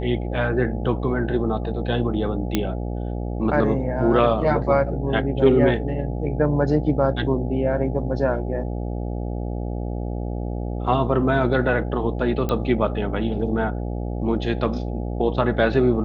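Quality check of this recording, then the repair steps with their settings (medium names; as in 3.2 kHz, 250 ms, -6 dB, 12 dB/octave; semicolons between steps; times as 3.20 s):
buzz 60 Hz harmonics 14 -27 dBFS
2.55 s: pop -6 dBFS
12.49 s: pop -12 dBFS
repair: de-click; de-hum 60 Hz, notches 14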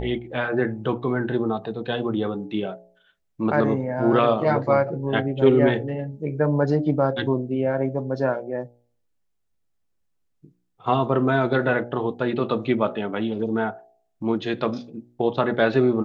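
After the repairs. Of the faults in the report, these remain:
2.55 s: pop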